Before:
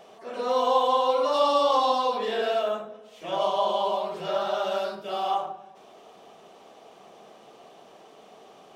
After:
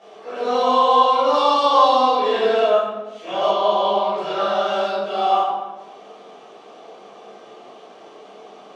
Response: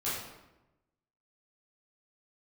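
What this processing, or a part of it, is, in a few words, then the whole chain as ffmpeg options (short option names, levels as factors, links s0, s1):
supermarket ceiling speaker: -filter_complex "[0:a]highpass=210,lowpass=6600[s0];[1:a]atrim=start_sample=2205[s1];[s0][s1]afir=irnorm=-1:irlink=0,asettb=1/sr,asplit=3[s2][s3][s4];[s2]atrim=end=3.514[s5];[s3]atrim=start=3.51:end=4.18,asetpts=PTS-STARTPTS,afade=t=in:d=0.004:c=qsin,afade=t=out:st=0.666:d=0.004:c=qsin,lowpass=5900[s6];[s4]atrim=start=4.176[s7];[s5][s6]acrossfade=d=0.004:c1=hsin:c2=qsin[s8];[s8][s7]acrossfade=d=0.004:c1=qsin:c2=hsin,volume=1.26"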